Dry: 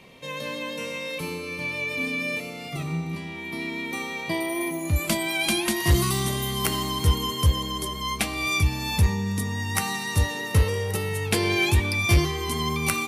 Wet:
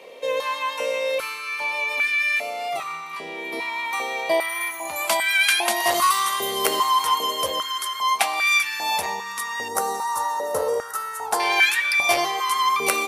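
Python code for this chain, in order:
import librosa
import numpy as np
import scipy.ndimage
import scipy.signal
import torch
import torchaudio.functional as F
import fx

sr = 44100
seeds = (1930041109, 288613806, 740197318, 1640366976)

y = fx.curve_eq(x, sr, hz=(1400.0, 2400.0, 6700.0), db=(0, -20, -2), at=(9.68, 11.4))
y = fx.filter_held_highpass(y, sr, hz=2.5, low_hz=500.0, high_hz=1600.0)
y = y * 10.0 ** (3.0 / 20.0)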